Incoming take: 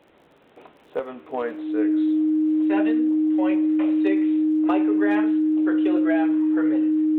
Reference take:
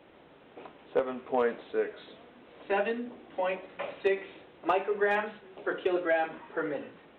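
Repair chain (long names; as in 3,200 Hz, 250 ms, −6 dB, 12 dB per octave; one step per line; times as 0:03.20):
click removal
notch filter 310 Hz, Q 30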